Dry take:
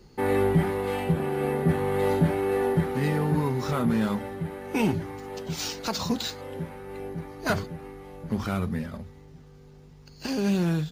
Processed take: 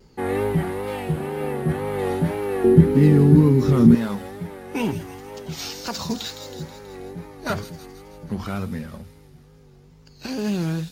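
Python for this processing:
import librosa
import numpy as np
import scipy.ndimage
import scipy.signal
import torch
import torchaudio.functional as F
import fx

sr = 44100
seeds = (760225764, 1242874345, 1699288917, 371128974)

y = fx.wow_flutter(x, sr, seeds[0], rate_hz=2.1, depth_cents=91.0)
y = fx.low_shelf_res(y, sr, hz=470.0, db=11.0, q=1.5, at=(2.64, 3.95))
y = fx.echo_wet_highpass(y, sr, ms=161, feedback_pct=59, hz=4700.0, wet_db=-4.5)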